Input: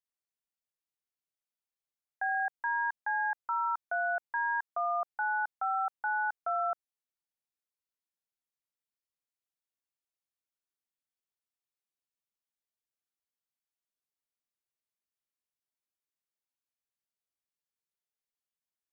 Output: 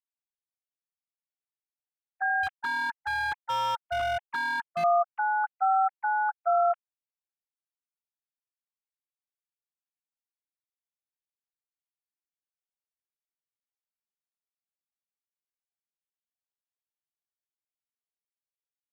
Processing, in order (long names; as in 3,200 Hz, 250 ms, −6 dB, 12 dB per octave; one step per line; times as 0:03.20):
three sine waves on the formant tracks
0:02.43–0:04.84: hard clipping −32 dBFS, distortion −12 dB
level +6 dB